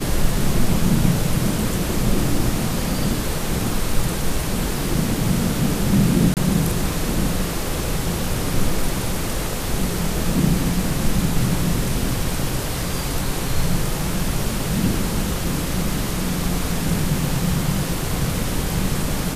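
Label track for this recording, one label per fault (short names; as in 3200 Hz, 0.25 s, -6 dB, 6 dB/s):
6.340000	6.370000	gap 28 ms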